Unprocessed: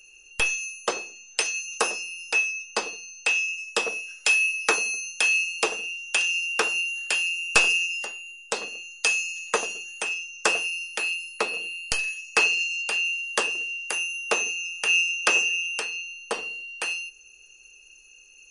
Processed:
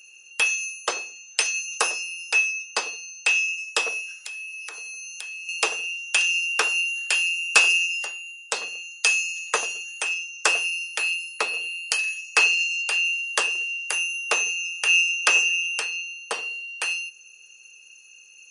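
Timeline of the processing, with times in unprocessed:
0:04.19–0:05.49: downward compressor 10 to 1, threshold −36 dBFS
whole clip: high-pass filter 890 Hz 6 dB per octave; level +3 dB

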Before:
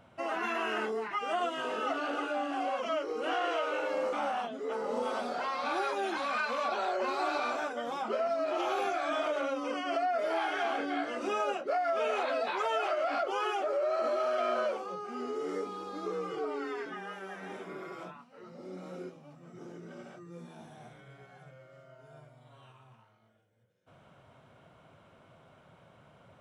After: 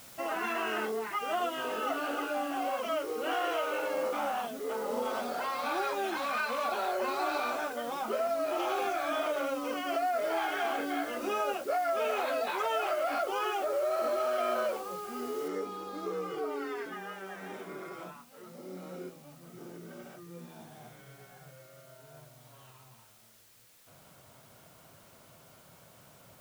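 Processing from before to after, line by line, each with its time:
0:15.48: noise floor change −52 dB −61 dB

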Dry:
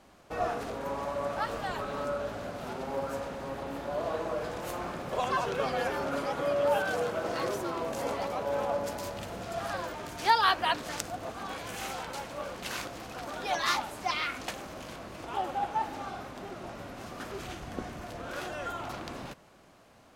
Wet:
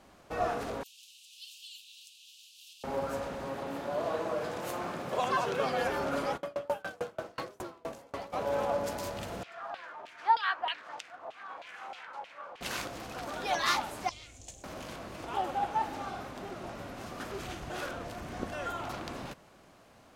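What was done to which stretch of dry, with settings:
0:00.83–0:02.84: Butterworth high-pass 2,700 Hz 96 dB per octave
0:03.47–0:05.81: high-pass filter 110 Hz
0:06.36–0:08.32: tremolo with a ramp in dB decaying 8.4 Hz → 2.9 Hz, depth 33 dB
0:09.43–0:12.61: auto-filter band-pass saw down 3.2 Hz 710–3,000 Hz
0:14.09–0:14.64: drawn EQ curve 100 Hz 0 dB, 170 Hz −16 dB, 700 Hz −16 dB, 1,300 Hz −30 dB, 3,300 Hz −14 dB, 4,900 Hz −13 dB, 7,000 Hz +3 dB, 12,000 Hz −16 dB
0:17.70–0:18.52: reverse

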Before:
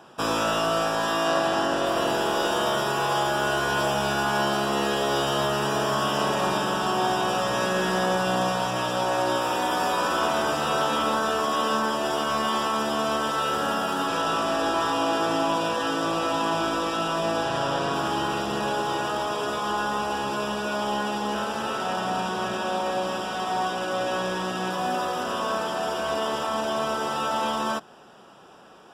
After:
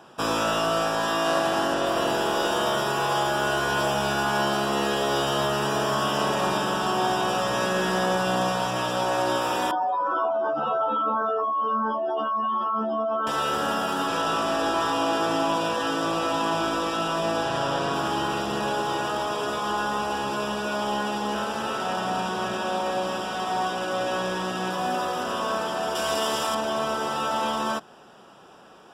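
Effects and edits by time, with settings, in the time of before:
0:01.24–0:01.74: variable-slope delta modulation 64 kbit/s
0:09.71–0:13.27: expanding power law on the bin magnitudes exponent 2.8
0:25.95–0:26.55: high-shelf EQ 3,600 Hz +11 dB

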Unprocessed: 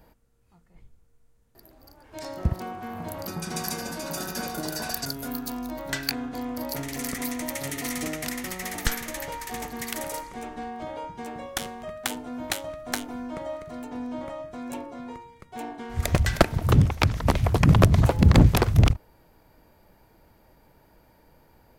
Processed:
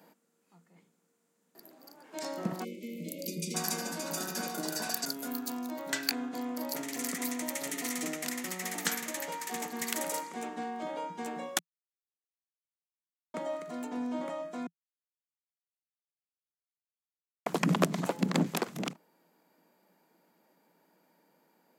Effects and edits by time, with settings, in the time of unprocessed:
0:02.64–0:03.55: time-frequency box erased 620–2,000 Hz
0:11.59–0:13.34: silence
0:14.67–0:17.46: silence
whole clip: Chebyshev high-pass filter 170 Hz, order 5; parametric band 7,300 Hz +5 dB 0.38 octaves; speech leveller within 4 dB 2 s; level −4.5 dB

